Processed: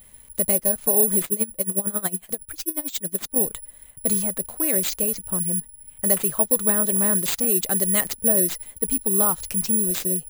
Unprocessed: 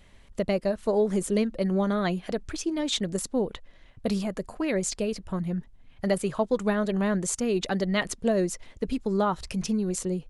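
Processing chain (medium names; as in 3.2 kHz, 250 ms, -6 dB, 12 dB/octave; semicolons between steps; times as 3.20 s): careless resampling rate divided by 4×, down none, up zero stuff; 1.24–3.36 s: logarithmic tremolo 11 Hz, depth 20 dB; trim -1 dB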